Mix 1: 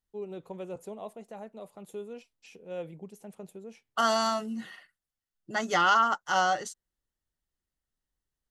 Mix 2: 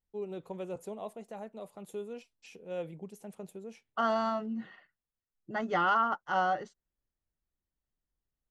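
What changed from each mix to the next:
second voice: add tape spacing loss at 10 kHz 35 dB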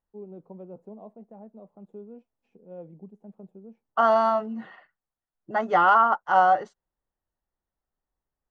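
first voice: add band-pass 210 Hz, Q 2; master: add bell 840 Hz +11.5 dB 2 oct

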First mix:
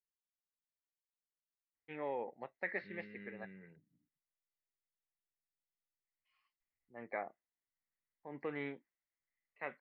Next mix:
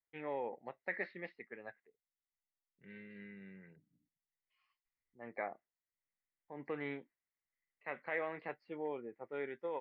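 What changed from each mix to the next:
first voice: entry -1.75 s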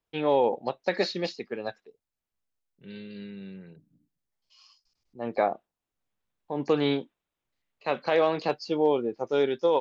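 first voice +5.5 dB; master: remove ladder low-pass 2100 Hz, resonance 80%

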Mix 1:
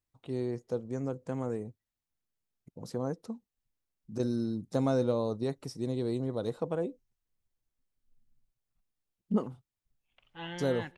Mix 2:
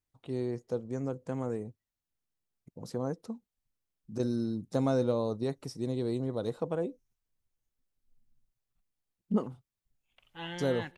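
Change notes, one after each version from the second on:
second voice: remove air absorption 100 m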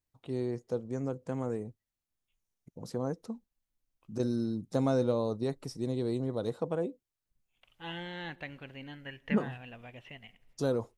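second voice: entry -2.55 s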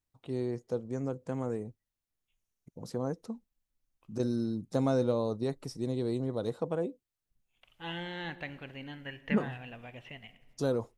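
second voice: send +10.0 dB

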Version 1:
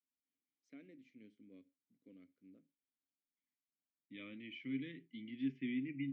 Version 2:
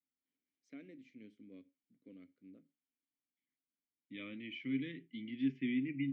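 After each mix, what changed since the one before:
first voice +4.5 dB; second voice +4.0 dB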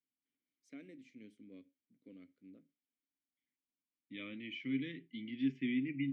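master: remove air absorption 93 m

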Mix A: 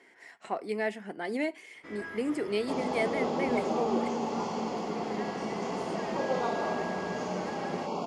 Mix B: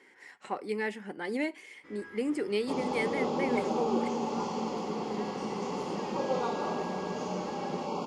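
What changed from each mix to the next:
first sound -7.5 dB; master: add Butterworth band-stop 670 Hz, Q 6.5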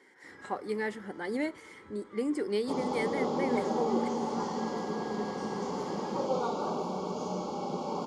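first sound: entry -1.60 s; master: add bell 2600 Hz -12 dB 0.3 oct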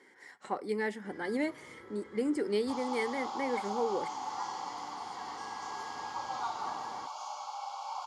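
first sound: entry +0.80 s; second sound: add steep high-pass 740 Hz 48 dB/oct

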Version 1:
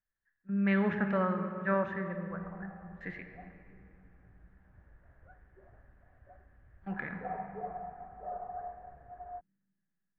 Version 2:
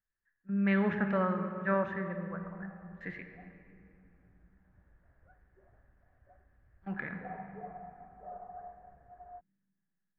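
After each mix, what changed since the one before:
background -5.5 dB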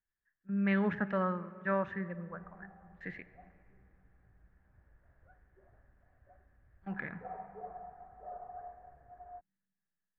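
speech: send -11.0 dB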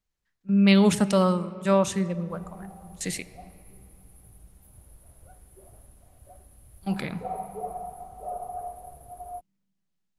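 master: remove ladder low-pass 1800 Hz, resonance 80%

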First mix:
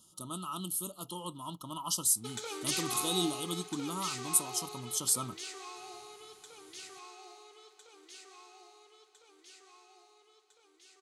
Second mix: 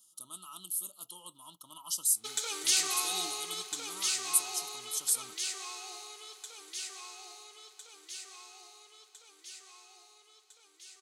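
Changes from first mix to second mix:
speech -11.0 dB; master: add tilt +3.5 dB/oct

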